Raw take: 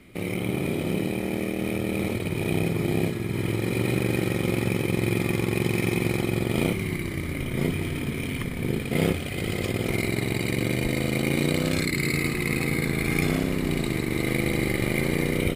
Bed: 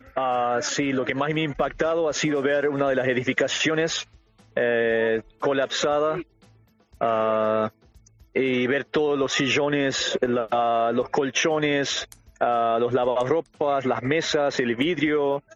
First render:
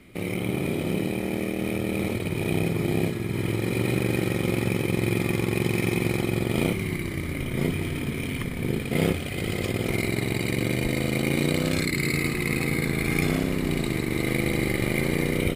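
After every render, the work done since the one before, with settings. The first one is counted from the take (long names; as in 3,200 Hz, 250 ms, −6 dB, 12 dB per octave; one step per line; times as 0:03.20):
no processing that can be heard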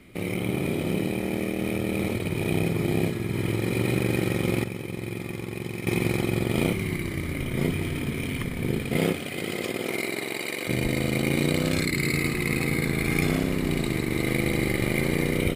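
0:04.64–0:05.87: clip gain −8.5 dB
0:08.98–0:10.67: high-pass filter 140 Hz → 530 Hz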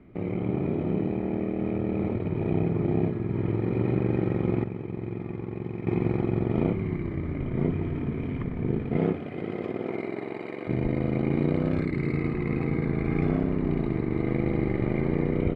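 low-pass filter 1,100 Hz 12 dB per octave
notch filter 530 Hz, Q 12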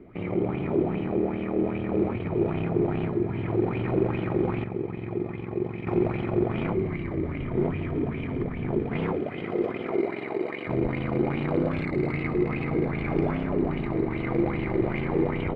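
soft clipping −22 dBFS, distortion −12 dB
auto-filter bell 2.5 Hz 350–3,100 Hz +13 dB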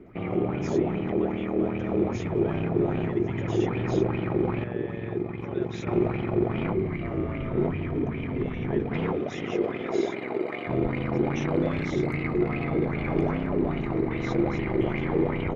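mix in bed −20 dB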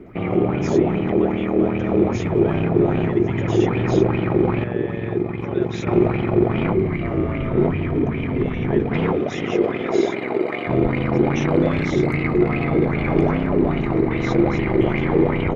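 level +7.5 dB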